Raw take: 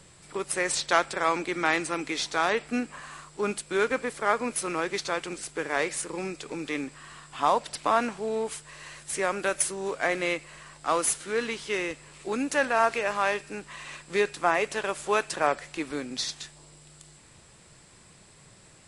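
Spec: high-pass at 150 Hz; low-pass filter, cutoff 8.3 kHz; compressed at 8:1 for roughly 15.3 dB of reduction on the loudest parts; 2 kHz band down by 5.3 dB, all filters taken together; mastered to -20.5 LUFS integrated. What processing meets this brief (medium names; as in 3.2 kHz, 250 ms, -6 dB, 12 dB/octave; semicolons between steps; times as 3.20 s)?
high-pass 150 Hz; low-pass 8.3 kHz; peaking EQ 2 kHz -7 dB; compression 8:1, threshold -35 dBFS; trim +19.5 dB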